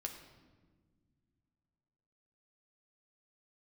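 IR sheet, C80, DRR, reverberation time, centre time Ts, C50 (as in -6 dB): 9.5 dB, 3.0 dB, not exponential, 24 ms, 7.5 dB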